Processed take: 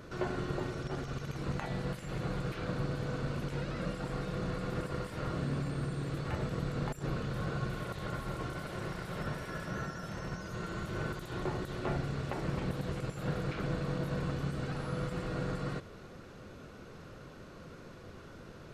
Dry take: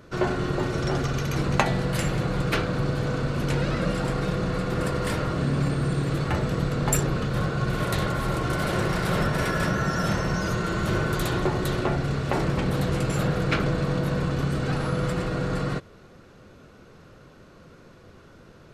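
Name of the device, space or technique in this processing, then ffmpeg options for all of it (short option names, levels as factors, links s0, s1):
de-esser from a sidechain: -filter_complex "[0:a]asplit=2[s0][s1];[s1]highpass=f=4300:w=0.5412,highpass=f=4300:w=1.3066,apad=whole_len=826297[s2];[s0][s2]sidechaincompress=threshold=0.00141:ratio=6:attack=1.2:release=26"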